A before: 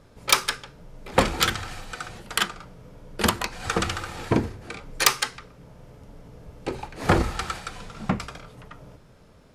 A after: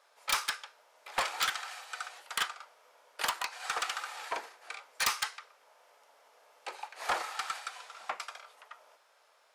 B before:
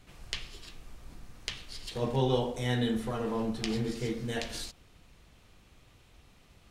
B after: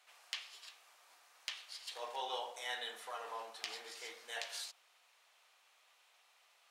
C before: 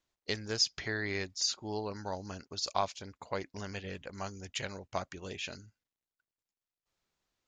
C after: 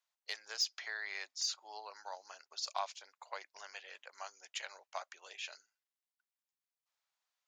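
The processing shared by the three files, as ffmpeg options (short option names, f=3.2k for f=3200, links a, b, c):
-af "highpass=f=690:w=0.5412,highpass=f=690:w=1.3066,asoftclip=type=tanh:threshold=-18.5dB,volume=-4dB"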